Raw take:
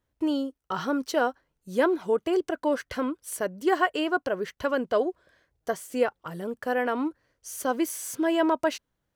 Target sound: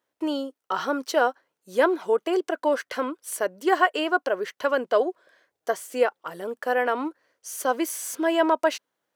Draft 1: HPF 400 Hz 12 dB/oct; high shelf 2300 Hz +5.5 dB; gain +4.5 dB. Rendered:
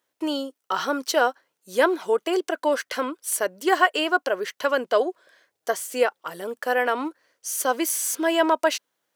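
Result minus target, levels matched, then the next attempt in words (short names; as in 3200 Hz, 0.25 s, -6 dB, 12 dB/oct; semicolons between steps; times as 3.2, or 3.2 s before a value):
4000 Hz band +3.5 dB
HPF 400 Hz 12 dB/oct; high shelf 2300 Hz -2 dB; gain +4.5 dB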